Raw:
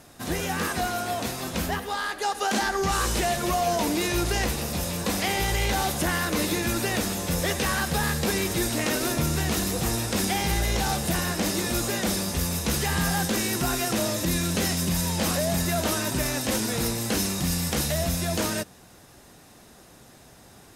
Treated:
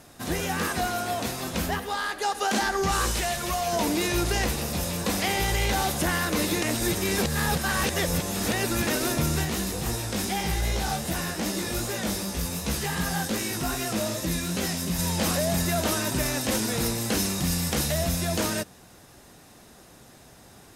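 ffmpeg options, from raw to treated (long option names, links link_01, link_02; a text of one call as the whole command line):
ffmpeg -i in.wav -filter_complex "[0:a]asettb=1/sr,asplit=3[link_01][link_02][link_03];[link_01]atrim=end=3.114[link_04];[link_02]atrim=start=3.11:end=3.73,asetpts=PTS-STARTPTS,afade=type=in:duration=0.004:curve=qsin,afade=type=out:start_time=0.616:duration=0.004:curve=qsin,equalizer=frequency=300:width=0.47:gain=-7[link_05];[link_03]atrim=start=3.726[link_06];[link_04][link_05]acrossfade=duration=0.004:curve1=hsin:curve2=qsin[link_07];[link_07][link_06]acrossfade=duration=0.004:curve1=qsin:curve2=hsin,asplit=3[link_08][link_09][link_10];[link_08]afade=type=out:start_time=9.44:duration=0.02[link_11];[link_09]flanger=delay=15:depth=4.7:speed=2.6,afade=type=in:start_time=9.44:duration=0.02,afade=type=out:start_time=14.98:duration=0.02[link_12];[link_10]afade=type=in:start_time=14.98:duration=0.02[link_13];[link_11][link_12][link_13]amix=inputs=3:normalize=0,asplit=3[link_14][link_15][link_16];[link_14]atrim=end=6.622[link_17];[link_15]atrim=start=6.618:end=8.872,asetpts=PTS-STARTPTS,areverse[link_18];[link_16]atrim=start=8.868[link_19];[link_17][link_18]acrossfade=duration=0.004:curve1=hsin:curve2=hsin[link_20];[link_20][link_19]acrossfade=duration=0.004:curve1=hsin:curve2=hsin" out.wav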